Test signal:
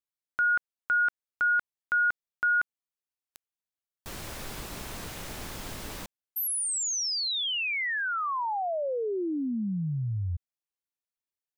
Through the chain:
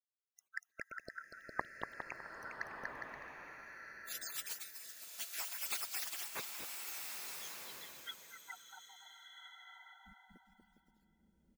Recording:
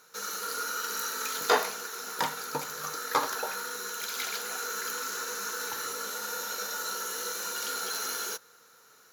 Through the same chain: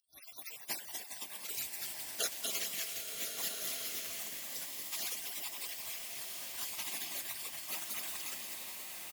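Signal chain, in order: random spectral dropouts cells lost 80%; bouncing-ball echo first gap 0.24 s, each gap 0.7×, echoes 5; spectral gate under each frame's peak -25 dB weak; low shelf 260 Hz -7 dB; bloom reverb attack 1.37 s, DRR 2.5 dB; gain +12.5 dB

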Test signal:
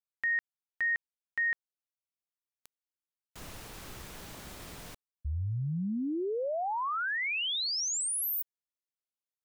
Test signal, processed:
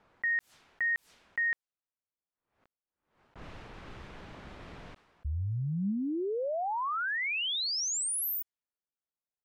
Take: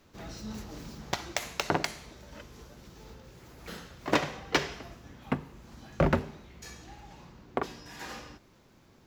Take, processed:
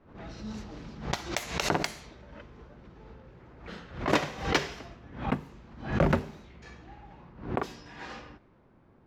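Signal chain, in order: low-pass opened by the level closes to 1300 Hz, open at -31 dBFS; dynamic EQ 200 Hz, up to +3 dB, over -51 dBFS, Q 7.7; backwards sustainer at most 110 dB/s

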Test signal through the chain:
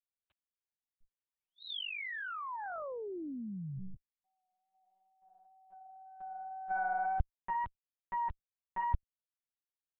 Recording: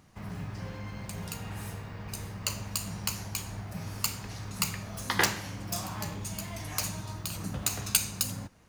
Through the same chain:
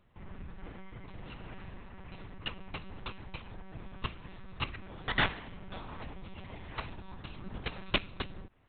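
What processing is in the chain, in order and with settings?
wow and flutter 22 cents; added harmonics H 3 -11 dB, 4 -17 dB, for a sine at -4 dBFS; monotone LPC vocoder at 8 kHz 190 Hz; gain +10 dB

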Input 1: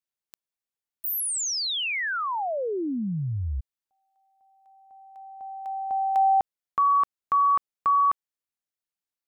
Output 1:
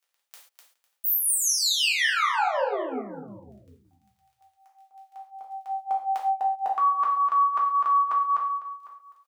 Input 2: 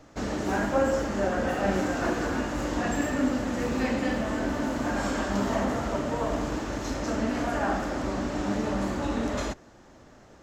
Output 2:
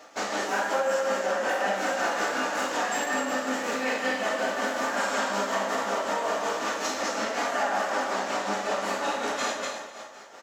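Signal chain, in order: on a send: feedback echo 0.251 s, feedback 33%, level -7 dB; on the sum: compressor 3:1, threshold -27 dBFS; crackle 11/s -56 dBFS; tremolo 5.4 Hz, depth 66%; HPF 590 Hz 12 dB/oct; non-linear reverb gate 0.16 s falling, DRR -2.5 dB; in parallel at +2 dB: limiter -26 dBFS

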